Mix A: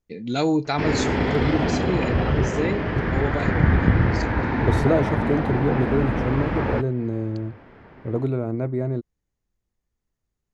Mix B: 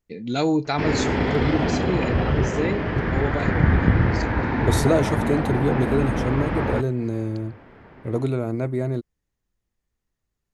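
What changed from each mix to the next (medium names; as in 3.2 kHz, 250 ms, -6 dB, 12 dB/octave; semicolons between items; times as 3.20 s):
second voice: remove low-pass 1.3 kHz 6 dB/octave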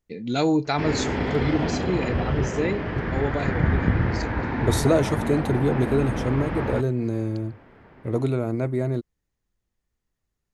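background -3.5 dB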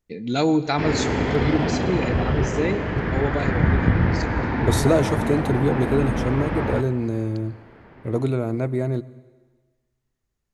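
reverb: on, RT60 1.4 s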